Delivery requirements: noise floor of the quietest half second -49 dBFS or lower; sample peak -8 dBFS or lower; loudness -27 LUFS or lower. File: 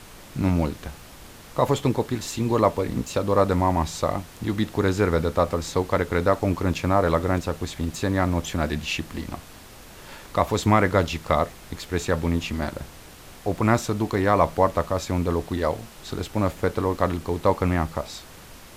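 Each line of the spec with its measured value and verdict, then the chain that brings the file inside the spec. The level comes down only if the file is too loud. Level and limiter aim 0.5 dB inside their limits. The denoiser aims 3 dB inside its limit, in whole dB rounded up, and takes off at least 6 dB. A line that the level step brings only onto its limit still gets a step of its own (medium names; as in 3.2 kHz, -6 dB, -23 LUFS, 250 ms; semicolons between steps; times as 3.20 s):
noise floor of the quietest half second -45 dBFS: fail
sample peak -5.5 dBFS: fail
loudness -24.5 LUFS: fail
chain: noise reduction 6 dB, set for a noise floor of -45 dBFS; trim -3 dB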